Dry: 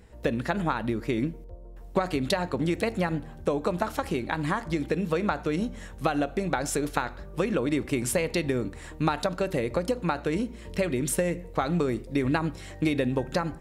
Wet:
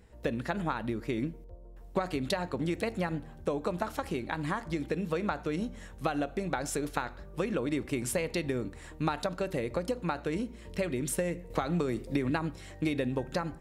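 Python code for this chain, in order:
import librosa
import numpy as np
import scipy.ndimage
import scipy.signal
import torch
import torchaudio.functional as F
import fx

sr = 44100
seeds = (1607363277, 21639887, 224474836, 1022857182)

y = fx.band_squash(x, sr, depth_pct=100, at=(11.5, 12.3))
y = y * 10.0 ** (-5.0 / 20.0)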